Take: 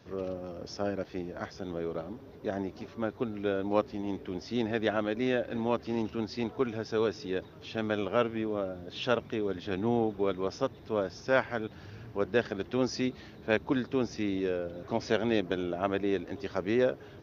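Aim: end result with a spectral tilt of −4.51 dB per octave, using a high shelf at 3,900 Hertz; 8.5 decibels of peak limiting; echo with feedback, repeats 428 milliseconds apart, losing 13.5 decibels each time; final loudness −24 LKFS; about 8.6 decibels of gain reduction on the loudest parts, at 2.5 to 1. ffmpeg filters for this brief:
ffmpeg -i in.wav -af "highshelf=frequency=3900:gain=4.5,acompressor=threshold=-34dB:ratio=2.5,alimiter=level_in=3.5dB:limit=-24dB:level=0:latency=1,volume=-3.5dB,aecho=1:1:428|856:0.211|0.0444,volume=15.5dB" out.wav

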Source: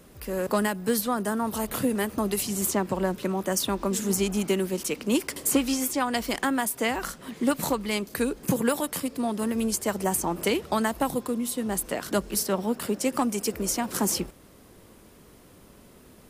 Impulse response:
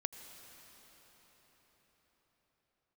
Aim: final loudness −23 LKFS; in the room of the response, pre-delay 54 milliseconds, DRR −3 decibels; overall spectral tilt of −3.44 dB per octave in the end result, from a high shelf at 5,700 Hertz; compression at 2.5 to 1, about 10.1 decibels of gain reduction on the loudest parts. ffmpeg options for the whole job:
-filter_complex "[0:a]highshelf=frequency=5700:gain=4,acompressor=threshold=-35dB:ratio=2.5,asplit=2[link_01][link_02];[1:a]atrim=start_sample=2205,adelay=54[link_03];[link_02][link_03]afir=irnorm=-1:irlink=0,volume=3.5dB[link_04];[link_01][link_04]amix=inputs=2:normalize=0,volume=7dB"

